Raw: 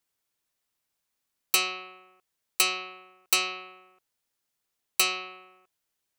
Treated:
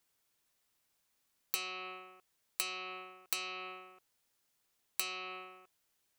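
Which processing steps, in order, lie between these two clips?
compression 10:1, threshold -37 dBFS, peak gain reduction 19 dB; trim +3 dB

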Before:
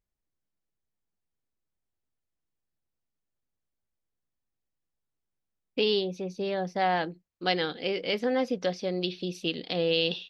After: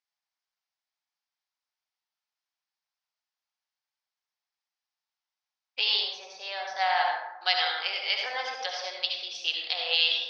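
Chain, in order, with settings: elliptic band-pass 780–5300 Hz, stop band 80 dB; treble shelf 3.3 kHz +10.5 dB; reverberation RT60 0.95 s, pre-delay 58 ms, DRR -0.5 dB

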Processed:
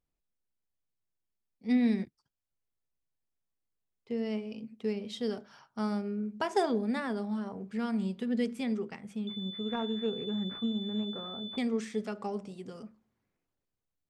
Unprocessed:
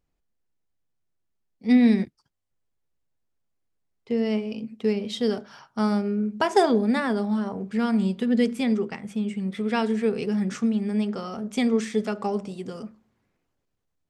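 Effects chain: 9.27–11.58 s: class-D stage that switches slowly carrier 3.5 kHz; trim -9 dB

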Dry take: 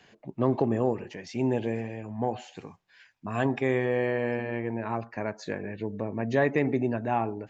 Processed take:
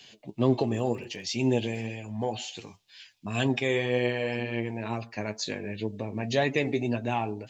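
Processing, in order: resonant high shelf 2.3 kHz +12 dB, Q 1.5; 0.69–1.83 s: crackle 19 per s -41 dBFS; flange 2 Hz, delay 7.5 ms, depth 2.8 ms, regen +45%; trim +3 dB

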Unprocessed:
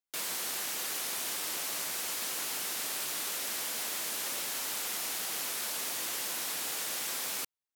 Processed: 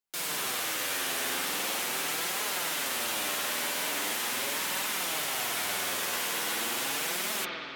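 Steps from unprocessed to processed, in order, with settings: spring tank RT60 2.8 s, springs 49 ms, chirp 75 ms, DRR -5 dB; flange 0.41 Hz, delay 4.6 ms, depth 7.8 ms, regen +39%; trim +5.5 dB

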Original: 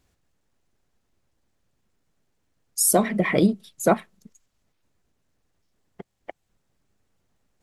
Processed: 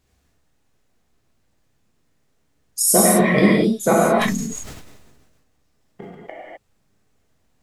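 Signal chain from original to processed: gated-style reverb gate 280 ms flat, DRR -5.5 dB; 3.93–6.15 s: decay stretcher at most 36 dB/s

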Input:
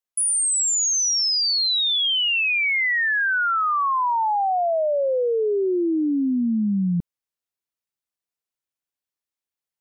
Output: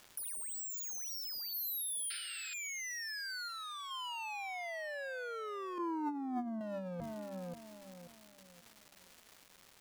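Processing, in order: wavefolder -23.5 dBFS; hum notches 50/100/150/200/250/300 Hz; filtered feedback delay 535 ms, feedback 35%, low-pass 2 kHz, level -18 dB; crackle 580 per s -49 dBFS; 1.53–2.18 s: high-order bell 2.4 kHz -14 dB 2.6 oct; 2.10–2.54 s: painted sound noise 1.3–5.2 kHz -32 dBFS; 5.78–6.61 s: FFT filter 290 Hz 0 dB, 450 Hz -13 dB, 1.1 kHz -6 dB, 2.9 kHz -22 dB, 6.5 kHz -14 dB; compressor with a negative ratio -37 dBFS, ratio -1; 3.48–3.91 s: transformer saturation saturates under 2 kHz; trim -4 dB

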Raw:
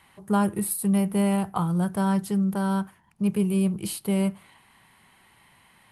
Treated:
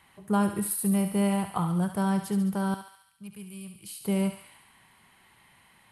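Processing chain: 2.74–4.01 s: amplifier tone stack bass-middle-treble 5-5-5; thinning echo 70 ms, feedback 69%, high-pass 980 Hz, level -7 dB; trim -2.5 dB

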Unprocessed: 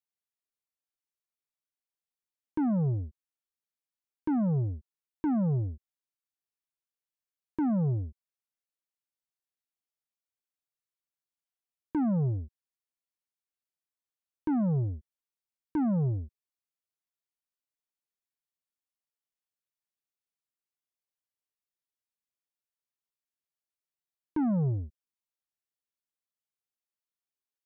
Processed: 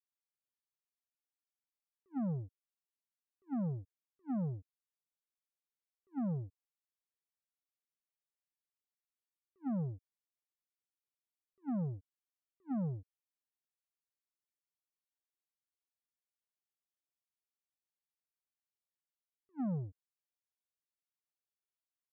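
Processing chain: tape speed +25%; attacks held to a fixed rise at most 550 dB/s; trim -8 dB

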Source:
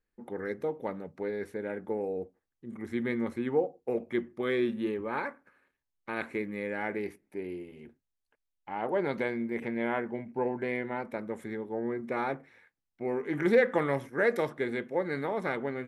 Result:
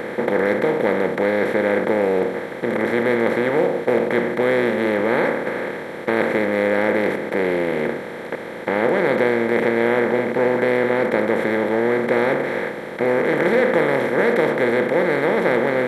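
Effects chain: spectral levelling over time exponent 0.2; trim +1.5 dB

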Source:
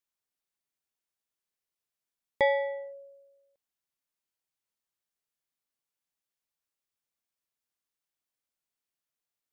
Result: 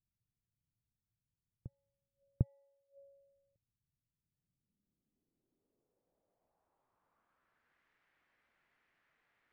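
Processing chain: inverted gate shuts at -37 dBFS, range -30 dB; reverse echo 750 ms -17 dB; low-pass sweep 120 Hz -> 1.9 kHz, 4.09–7.82 s; trim +15.5 dB

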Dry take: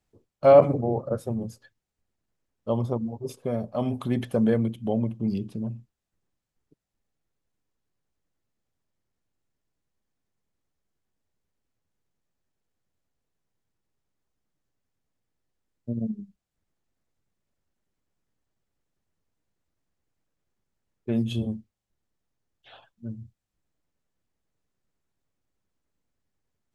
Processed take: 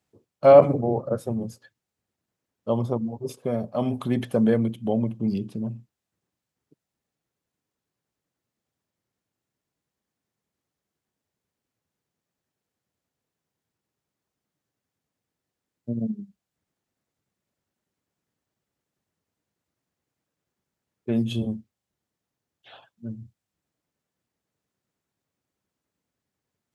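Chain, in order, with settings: high-pass 100 Hz; trim +2 dB

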